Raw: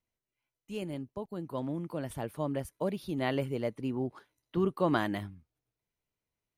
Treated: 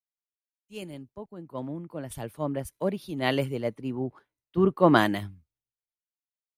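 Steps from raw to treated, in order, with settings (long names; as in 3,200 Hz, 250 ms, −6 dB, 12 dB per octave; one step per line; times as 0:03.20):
multiband upward and downward expander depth 100%
level +3 dB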